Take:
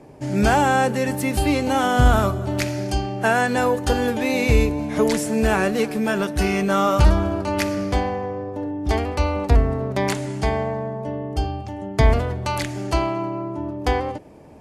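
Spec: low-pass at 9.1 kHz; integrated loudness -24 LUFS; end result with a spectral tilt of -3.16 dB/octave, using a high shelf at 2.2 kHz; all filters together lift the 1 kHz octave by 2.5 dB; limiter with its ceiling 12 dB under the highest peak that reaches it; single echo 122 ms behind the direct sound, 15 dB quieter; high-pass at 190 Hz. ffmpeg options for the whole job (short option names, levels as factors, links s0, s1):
-af "highpass=190,lowpass=9100,equalizer=f=1000:t=o:g=5,highshelf=f=2200:g=-8.5,alimiter=limit=0.141:level=0:latency=1,aecho=1:1:122:0.178,volume=1.33"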